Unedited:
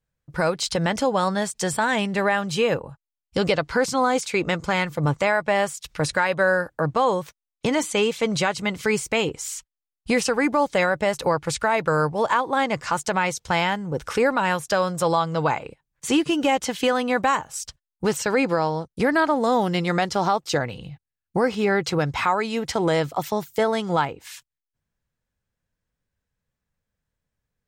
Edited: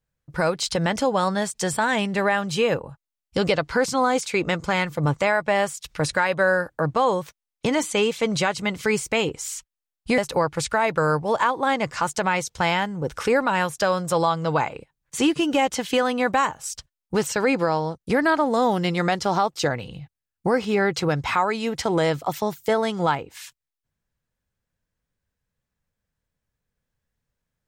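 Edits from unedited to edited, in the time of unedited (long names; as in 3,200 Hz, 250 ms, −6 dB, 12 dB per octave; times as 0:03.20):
0:10.18–0:11.08: remove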